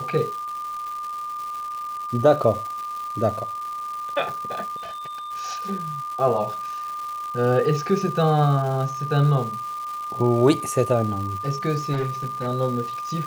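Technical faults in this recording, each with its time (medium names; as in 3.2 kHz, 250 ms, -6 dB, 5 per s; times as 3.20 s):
crackle 460 per s -32 dBFS
whine 1.2 kHz -28 dBFS
4.76–5.32 s: clipped -32 dBFS
11.92–12.48 s: clipped -21 dBFS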